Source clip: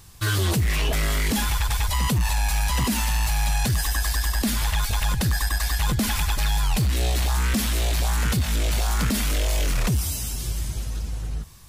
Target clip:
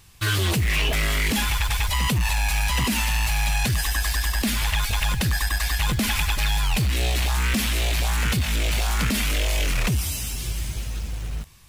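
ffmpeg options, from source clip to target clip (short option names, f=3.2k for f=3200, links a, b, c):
-filter_complex "[0:a]equalizer=f=2.5k:t=o:w=0.99:g=7,asplit=2[a][b];[b]acrusher=bits=5:mix=0:aa=0.000001,volume=-5dB[c];[a][c]amix=inputs=2:normalize=0,volume=-4.5dB"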